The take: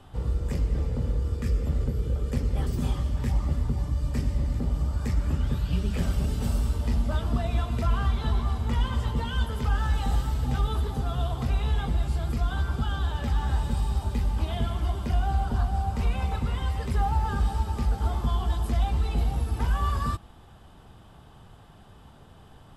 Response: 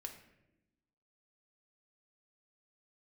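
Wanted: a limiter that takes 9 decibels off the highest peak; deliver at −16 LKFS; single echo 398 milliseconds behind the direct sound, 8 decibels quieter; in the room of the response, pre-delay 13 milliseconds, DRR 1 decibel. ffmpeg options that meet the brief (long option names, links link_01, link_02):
-filter_complex "[0:a]alimiter=limit=-22.5dB:level=0:latency=1,aecho=1:1:398:0.398,asplit=2[link_01][link_02];[1:a]atrim=start_sample=2205,adelay=13[link_03];[link_02][link_03]afir=irnorm=-1:irlink=0,volume=2.5dB[link_04];[link_01][link_04]amix=inputs=2:normalize=0,volume=11.5dB"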